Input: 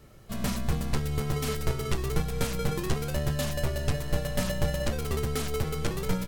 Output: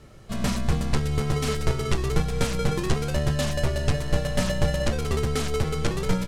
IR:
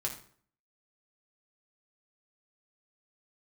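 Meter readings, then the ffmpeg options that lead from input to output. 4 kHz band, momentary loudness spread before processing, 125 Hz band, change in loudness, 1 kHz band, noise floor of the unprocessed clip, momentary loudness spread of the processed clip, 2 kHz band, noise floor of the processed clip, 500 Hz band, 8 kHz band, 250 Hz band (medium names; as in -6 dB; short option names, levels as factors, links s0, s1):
+4.5 dB, 2 LU, +4.5 dB, +4.5 dB, +4.5 dB, -37 dBFS, 2 LU, +4.5 dB, -33 dBFS, +4.5 dB, +3.0 dB, +4.5 dB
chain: -af "lowpass=9100,volume=1.68"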